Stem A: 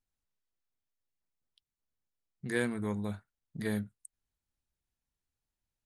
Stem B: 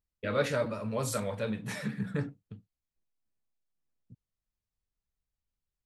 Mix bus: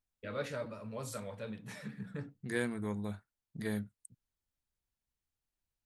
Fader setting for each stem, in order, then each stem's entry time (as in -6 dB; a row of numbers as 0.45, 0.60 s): -3.0, -9.5 dB; 0.00, 0.00 s